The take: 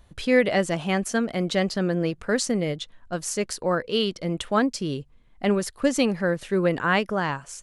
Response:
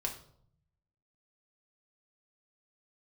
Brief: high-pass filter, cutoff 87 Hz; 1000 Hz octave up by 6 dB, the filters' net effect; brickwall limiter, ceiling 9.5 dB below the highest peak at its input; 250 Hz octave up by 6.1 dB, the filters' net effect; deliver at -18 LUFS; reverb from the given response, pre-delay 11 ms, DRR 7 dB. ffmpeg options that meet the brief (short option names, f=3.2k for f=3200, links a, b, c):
-filter_complex "[0:a]highpass=87,equalizer=f=250:t=o:g=7.5,equalizer=f=1k:t=o:g=7.5,alimiter=limit=-13dB:level=0:latency=1,asplit=2[a][b];[1:a]atrim=start_sample=2205,adelay=11[c];[b][c]afir=irnorm=-1:irlink=0,volume=-9dB[d];[a][d]amix=inputs=2:normalize=0,volume=4.5dB"